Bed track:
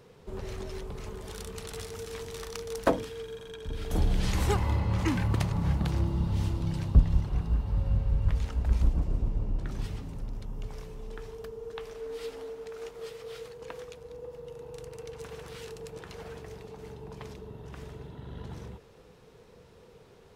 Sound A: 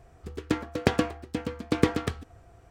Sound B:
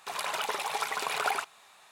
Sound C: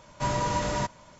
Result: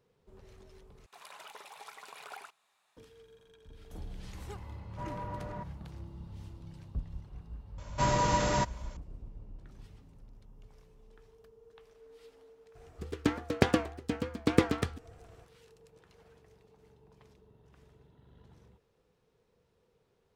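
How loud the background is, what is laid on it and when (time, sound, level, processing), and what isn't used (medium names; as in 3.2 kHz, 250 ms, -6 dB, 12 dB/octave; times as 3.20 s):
bed track -17.5 dB
1.06 s: replace with B -17.5 dB
4.77 s: add C -12.5 dB + low-pass 1.5 kHz
7.78 s: add C
12.75 s: add A -2 dB + vibrato 3.4 Hz 77 cents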